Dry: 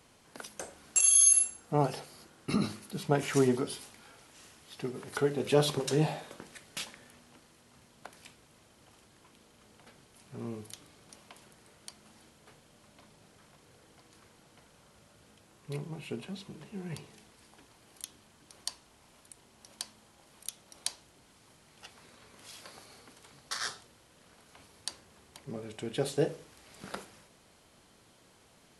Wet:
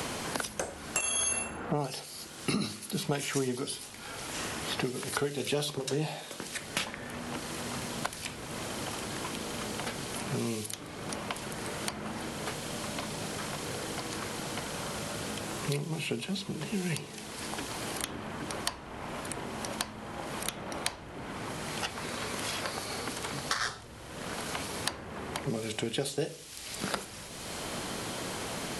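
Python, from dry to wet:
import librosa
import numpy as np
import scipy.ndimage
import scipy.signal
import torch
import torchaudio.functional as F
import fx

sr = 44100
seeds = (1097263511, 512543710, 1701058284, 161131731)

y = fx.band_squash(x, sr, depth_pct=100)
y = y * librosa.db_to_amplitude(7.5)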